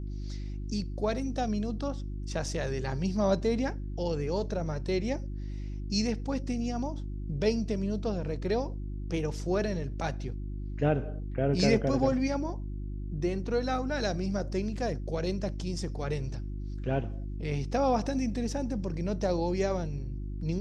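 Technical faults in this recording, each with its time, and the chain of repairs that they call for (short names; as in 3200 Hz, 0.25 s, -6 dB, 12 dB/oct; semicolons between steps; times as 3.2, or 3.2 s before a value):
hum 50 Hz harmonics 7 -36 dBFS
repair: de-hum 50 Hz, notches 7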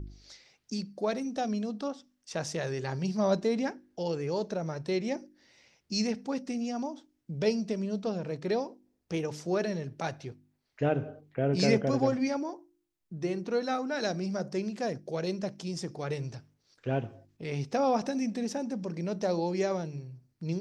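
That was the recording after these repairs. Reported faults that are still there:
none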